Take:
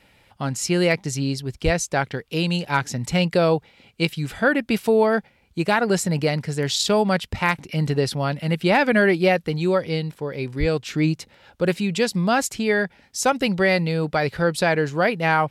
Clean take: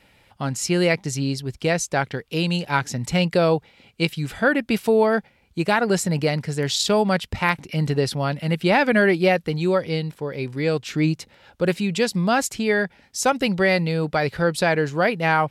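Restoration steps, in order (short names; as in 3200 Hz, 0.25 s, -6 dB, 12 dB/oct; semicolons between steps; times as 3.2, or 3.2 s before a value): clip repair -6.5 dBFS; 1.64–1.76 HPF 140 Hz 24 dB/oct; 10.59–10.71 HPF 140 Hz 24 dB/oct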